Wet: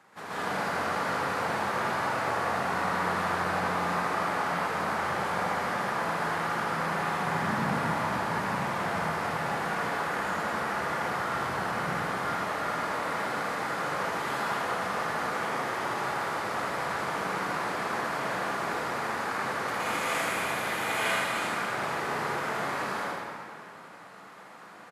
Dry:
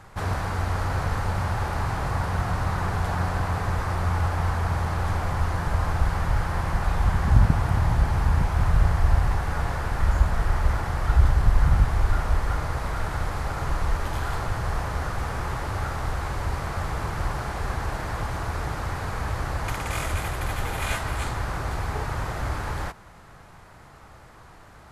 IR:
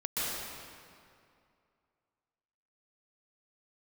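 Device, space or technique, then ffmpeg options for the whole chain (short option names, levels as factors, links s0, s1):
PA in a hall: -filter_complex "[0:a]highpass=f=190:w=0.5412,highpass=f=190:w=1.3066,equalizer=f=2200:t=o:w=1.4:g=3,aecho=1:1:80:0.501[s0];[1:a]atrim=start_sample=2205[s1];[s0][s1]afir=irnorm=-1:irlink=0,volume=0.422"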